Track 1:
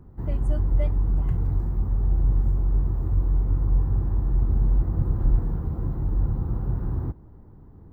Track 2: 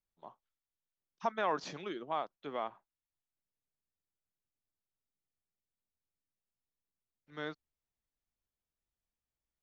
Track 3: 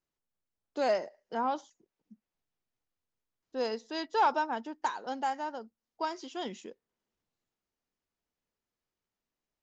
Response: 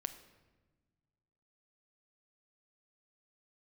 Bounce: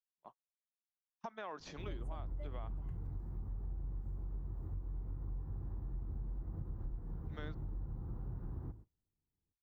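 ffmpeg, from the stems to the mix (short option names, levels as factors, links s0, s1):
-filter_complex "[0:a]adelay=1600,volume=0.158,asplit=2[s0][s1];[s1]volume=0.335[s2];[1:a]acompressor=threshold=0.00891:ratio=2.5,volume=0.668,asplit=2[s3][s4];[s4]volume=0.119[s5];[3:a]atrim=start_sample=2205[s6];[s2][s5]amix=inputs=2:normalize=0[s7];[s7][s6]afir=irnorm=-1:irlink=0[s8];[s0][s3][s8]amix=inputs=3:normalize=0,bandreject=f=53.32:t=h:w=4,bandreject=f=106.64:t=h:w=4,agate=range=0.0355:threshold=0.00251:ratio=16:detection=peak,acompressor=threshold=0.0126:ratio=6"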